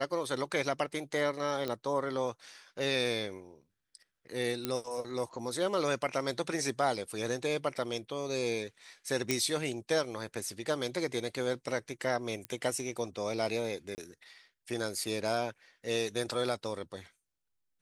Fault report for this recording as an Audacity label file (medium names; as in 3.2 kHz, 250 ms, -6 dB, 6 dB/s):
1.680000	1.680000	pop -21 dBFS
4.650000	4.650000	pop -15 dBFS
9.310000	9.310000	pop -13 dBFS
12.450000	12.450000	pop -22 dBFS
13.950000	13.980000	dropout 29 ms